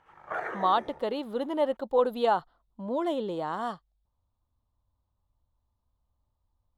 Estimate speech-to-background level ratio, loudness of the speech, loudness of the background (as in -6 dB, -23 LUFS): 9.0 dB, -29.0 LUFS, -38.0 LUFS